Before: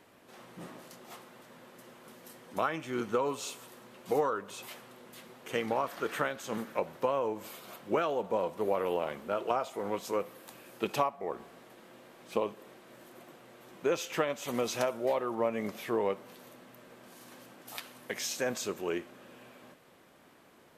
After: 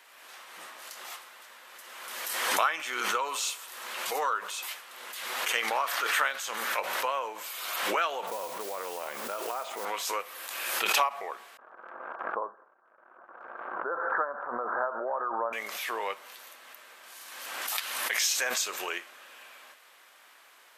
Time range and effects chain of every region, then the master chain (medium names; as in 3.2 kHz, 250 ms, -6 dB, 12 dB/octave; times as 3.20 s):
8.27–9.85 s: compression 5:1, threshold -31 dBFS + tilt EQ -4 dB/octave + modulation noise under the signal 22 dB
11.57–15.53 s: steep low-pass 1.6 kHz 96 dB/octave + gate -53 dBFS, range -28 dB
whole clip: high-pass 1.2 kHz 12 dB/octave; swell ahead of each attack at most 32 dB/s; trim +8.5 dB